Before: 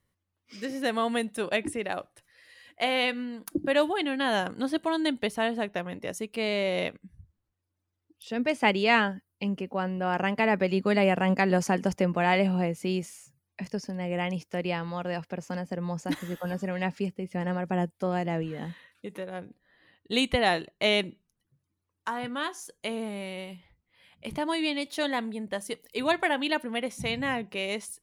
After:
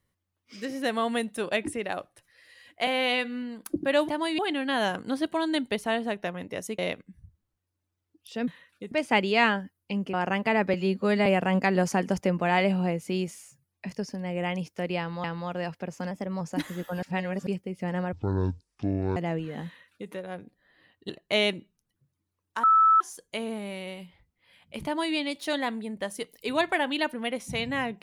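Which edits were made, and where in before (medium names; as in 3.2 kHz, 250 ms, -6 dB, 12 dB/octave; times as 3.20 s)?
2.87–3.24 s: stretch 1.5×
6.30–6.74 s: delete
9.65–10.06 s: delete
10.66–11.01 s: stretch 1.5×
14.74–14.99 s: loop, 2 plays
15.61–15.93 s: speed 108%
16.55–16.99 s: reverse
17.65–18.20 s: speed 53%
18.70–19.14 s: copy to 8.43 s
20.13–20.60 s: delete
22.14–22.51 s: bleep 1.31 kHz -15.5 dBFS
24.36–24.66 s: copy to 3.90 s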